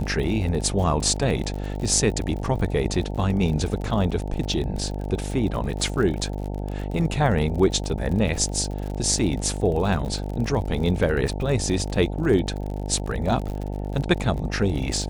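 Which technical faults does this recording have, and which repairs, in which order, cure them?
buzz 50 Hz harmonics 18 -29 dBFS
crackle 49/s -30 dBFS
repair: de-click; de-hum 50 Hz, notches 18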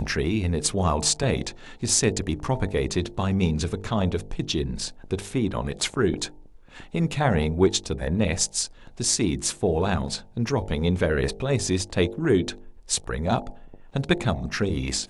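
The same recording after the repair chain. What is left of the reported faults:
none

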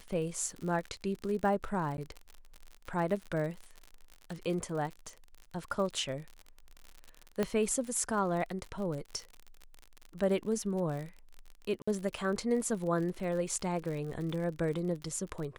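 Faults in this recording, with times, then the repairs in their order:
crackle 56/s -38 dBFS
1.97–1.98 gap 11 ms
7.43 pop -17 dBFS
11.82–11.88 gap 55 ms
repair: de-click; interpolate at 1.97, 11 ms; interpolate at 11.82, 55 ms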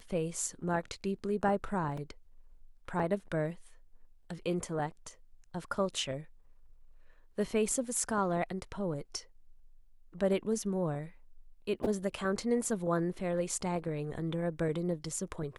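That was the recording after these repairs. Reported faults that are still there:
7.43 pop

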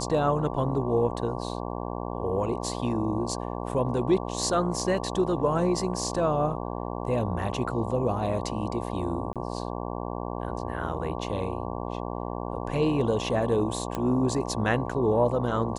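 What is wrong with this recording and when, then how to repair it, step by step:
buzz 60 Hz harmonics 19 -33 dBFS
9.33–9.36 gap 27 ms
13.95 pop -16 dBFS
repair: de-click; de-hum 60 Hz, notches 19; interpolate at 9.33, 27 ms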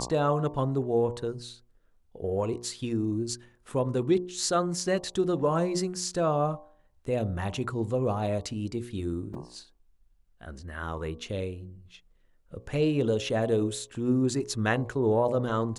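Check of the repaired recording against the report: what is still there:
13.95 pop

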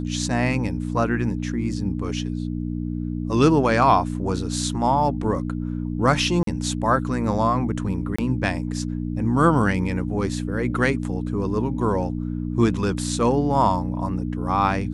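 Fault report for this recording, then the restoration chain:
hum 60 Hz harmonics 5 -27 dBFS
6.43–6.47 gap 43 ms
8.16–8.19 gap 25 ms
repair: de-hum 60 Hz, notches 5; interpolate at 6.43, 43 ms; interpolate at 8.16, 25 ms

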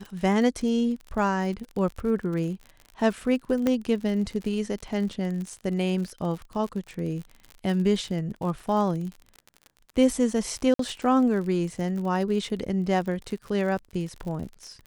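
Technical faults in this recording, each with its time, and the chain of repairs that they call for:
crackle 53/s -33 dBFS
3.67 pop -12 dBFS
10.74–10.79 gap 53 ms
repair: de-click; interpolate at 10.74, 53 ms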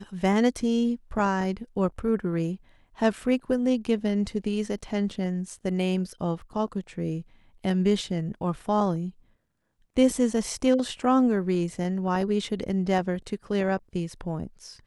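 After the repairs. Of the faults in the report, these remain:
3.67 pop

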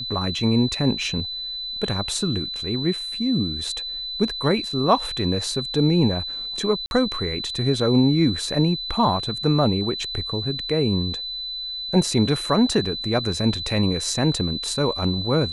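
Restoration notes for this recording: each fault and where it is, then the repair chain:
tone 4000 Hz -28 dBFS
6.86–6.91 gap 51 ms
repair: notch 4000 Hz, Q 30; interpolate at 6.86, 51 ms

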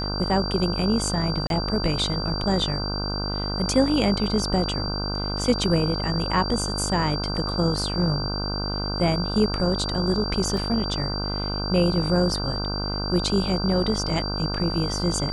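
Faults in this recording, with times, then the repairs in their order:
buzz 50 Hz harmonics 31 -29 dBFS
tone 4700 Hz -30 dBFS
1.47–1.5 gap 32 ms
10.57 gap 2.5 ms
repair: notch 4700 Hz, Q 30; de-hum 50 Hz, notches 31; interpolate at 1.47, 32 ms; interpolate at 10.57, 2.5 ms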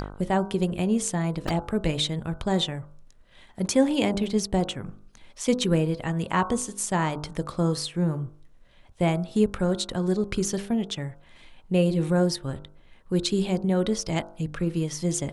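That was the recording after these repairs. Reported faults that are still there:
none

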